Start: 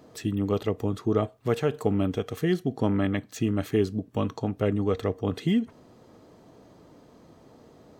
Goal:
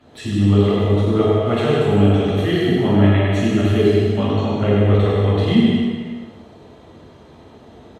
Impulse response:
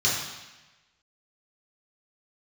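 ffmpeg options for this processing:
-filter_complex "[0:a]aecho=1:1:100|180|244|295.2|336.2:0.631|0.398|0.251|0.158|0.1[a];[1:a]atrim=start_sample=2205,afade=t=out:st=0.4:d=0.01,atrim=end_sample=18081,asetrate=25137,aresample=44100[b];[a][b]afir=irnorm=-1:irlink=0,volume=-10dB"

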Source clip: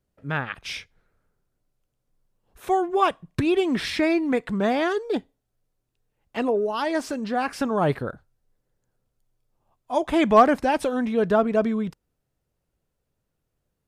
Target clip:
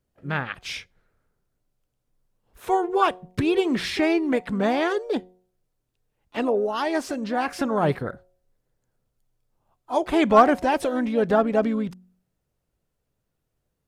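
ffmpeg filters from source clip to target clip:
-filter_complex "[0:a]bandreject=f=182.7:t=h:w=4,bandreject=f=365.4:t=h:w=4,bandreject=f=548.1:t=h:w=4,bandreject=f=730.8:t=h:w=4,asplit=2[a][b];[b]asetrate=55563,aresample=44100,atempo=0.793701,volume=-13dB[c];[a][c]amix=inputs=2:normalize=0"

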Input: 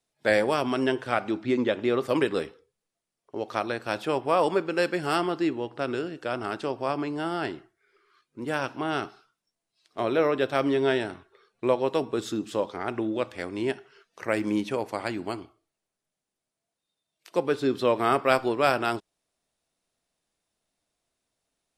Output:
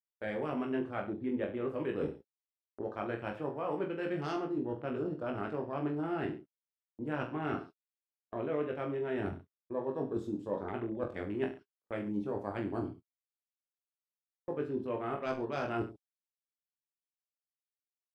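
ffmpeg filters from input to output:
-af "afwtdn=0.0158,atempo=1.2,lowshelf=f=310:g=9,areverse,acompressor=threshold=-34dB:ratio=10,areverse,aecho=1:1:20|43|69.45|99.87|134.8:0.631|0.398|0.251|0.158|0.1,agate=range=-42dB:threshold=-48dB:ratio=16:detection=peak"

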